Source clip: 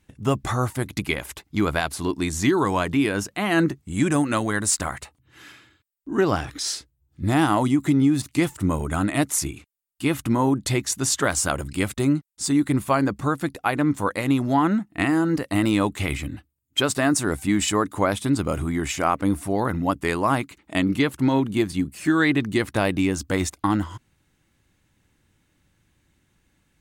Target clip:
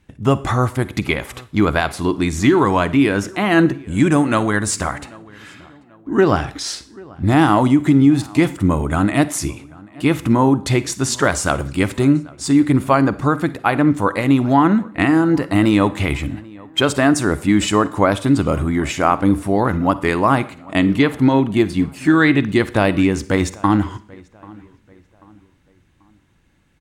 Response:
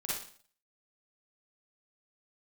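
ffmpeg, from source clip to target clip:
-filter_complex "[0:a]aemphasis=mode=reproduction:type=cd,asplit=2[link_01][link_02];[link_02]adelay=788,lowpass=frequency=2900:poles=1,volume=-23.5dB,asplit=2[link_03][link_04];[link_04]adelay=788,lowpass=frequency=2900:poles=1,volume=0.4,asplit=2[link_05][link_06];[link_06]adelay=788,lowpass=frequency=2900:poles=1,volume=0.4[link_07];[link_01][link_03][link_05][link_07]amix=inputs=4:normalize=0,asplit=2[link_08][link_09];[1:a]atrim=start_sample=2205[link_10];[link_09][link_10]afir=irnorm=-1:irlink=0,volume=-17dB[link_11];[link_08][link_11]amix=inputs=2:normalize=0,volume=5.5dB"

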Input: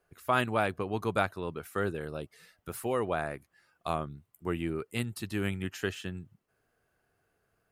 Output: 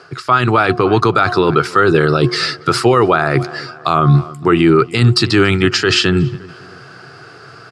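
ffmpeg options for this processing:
ffmpeg -i in.wav -filter_complex "[0:a]equalizer=frequency=4800:width=2.7:gain=13,bandreject=frequency=359.3:width_type=h:width=4,bandreject=frequency=718.6:width_type=h:width=4,bandreject=frequency=1077.9:width_type=h:width=4,areverse,acompressor=threshold=-43dB:ratio=4,areverse,highpass=frequency=110:width=0.5412,highpass=frequency=110:width=1.3066,equalizer=frequency=130:width_type=q:width=4:gain=9,equalizer=frequency=200:width_type=q:width=4:gain=-8,equalizer=frequency=360:width_type=q:width=4:gain=5,equalizer=frequency=570:width_type=q:width=4:gain=-5,equalizer=frequency=1300:width_type=q:width=4:gain=10,equalizer=frequency=6400:width_type=q:width=4:gain=-5,lowpass=frequency=7200:width=0.5412,lowpass=frequency=7200:width=1.3066,asplit=2[link_01][link_02];[link_02]adelay=281,lowpass=frequency=3100:poles=1,volume=-23.5dB,asplit=2[link_03][link_04];[link_04]adelay=281,lowpass=frequency=3100:poles=1,volume=0.46,asplit=2[link_05][link_06];[link_06]adelay=281,lowpass=frequency=3100:poles=1,volume=0.46[link_07];[link_01][link_03][link_05][link_07]amix=inputs=4:normalize=0,alimiter=level_in=36dB:limit=-1dB:release=50:level=0:latency=1,volume=-1dB" out.wav

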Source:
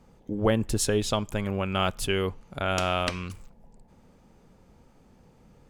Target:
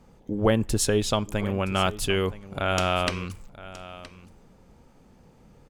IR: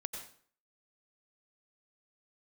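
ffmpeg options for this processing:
-af "aecho=1:1:969:0.141,volume=2dB"

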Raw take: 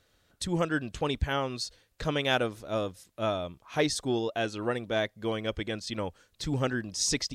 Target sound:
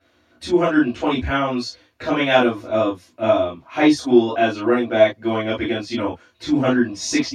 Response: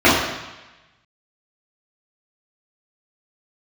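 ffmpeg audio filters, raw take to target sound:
-filter_complex "[0:a]lowshelf=frequency=180:gain=-10[link_01];[1:a]atrim=start_sample=2205,atrim=end_sample=3087[link_02];[link_01][link_02]afir=irnorm=-1:irlink=0,volume=-15.5dB"

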